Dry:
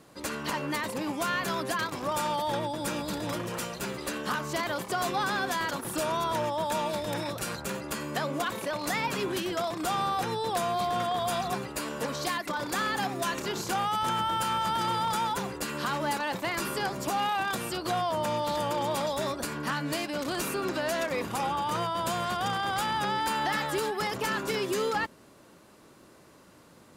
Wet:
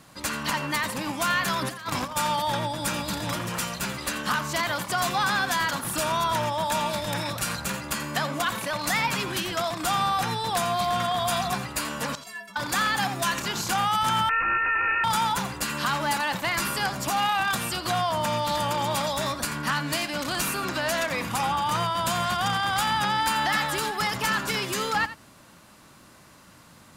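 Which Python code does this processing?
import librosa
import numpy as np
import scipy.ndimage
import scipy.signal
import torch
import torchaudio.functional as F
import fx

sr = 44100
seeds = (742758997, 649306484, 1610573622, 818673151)

y = fx.peak_eq(x, sr, hz=410.0, db=-11.5, octaves=1.2)
y = fx.over_compress(y, sr, threshold_db=-38.0, ratio=-0.5, at=(1.6, 2.15), fade=0.02)
y = fx.stiff_resonator(y, sr, f0_hz=200.0, decay_s=0.45, stiffness=0.03, at=(12.15, 12.56))
y = y + 10.0 ** (-14.0 / 20.0) * np.pad(y, (int(85 * sr / 1000.0), 0))[:len(y)]
y = fx.freq_invert(y, sr, carrier_hz=2700, at=(14.29, 15.04))
y = F.gain(torch.from_numpy(y), 6.5).numpy()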